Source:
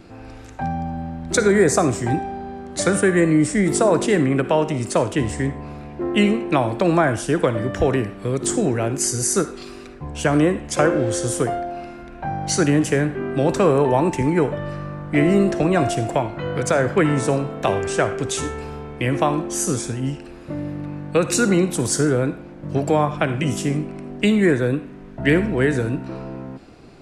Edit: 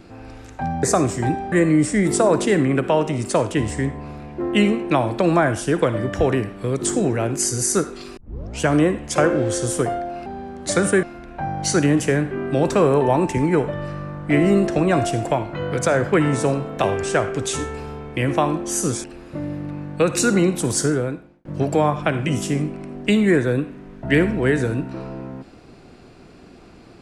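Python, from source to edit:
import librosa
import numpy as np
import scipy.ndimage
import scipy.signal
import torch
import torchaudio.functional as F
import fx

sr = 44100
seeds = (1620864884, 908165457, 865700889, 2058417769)

y = fx.edit(x, sr, fx.cut(start_s=0.83, length_s=0.84),
    fx.move(start_s=2.36, length_s=0.77, to_s=11.87),
    fx.tape_start(start_s=9.78, length_s=0.43),
    fx.cut(start_s=19.88, length_s=0.31),
    fx.fade_out_span(start_s=21.96, length_s=0.64), tone=tone)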